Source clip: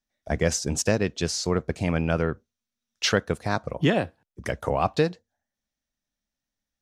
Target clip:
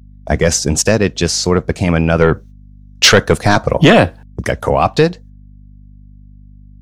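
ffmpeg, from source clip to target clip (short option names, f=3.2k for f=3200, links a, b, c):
-filter_complex "[0:a]agate=range=-21dB:threshold=-49dB:ratio=16:detection=peak,asettb=1/sr,asplit=3[a][b][c];[a]atrim=end=2.214[d];[b]atrim=start=2.21:end=4.42,asetpts=PTS-STARTPTS,afade=t=in:d=0.004:c=qsin,afade=t=out:st=2.206:d=0.004:c=qsin,acontrast=89[e];[c]atrim=start=4.416[f];[d][e]acrossfade=d=0.004:c1=hsin:c2=qsin[g];[g][f]acrossfade=d=0.004:c1=qsin:c2=hsin,apsyclip=14dB,aeval=exprs='val(0)+0.0158*(sin(2*PI*50*n/s)+sin(2*PI*2*50*n/s)/2+sin(2*PI*3*50*n/s)/3+sin(2*PI*4*50*n/s)/4+sin(2*PI*5*50*n/s)/5)':c=same,volume=-2dB"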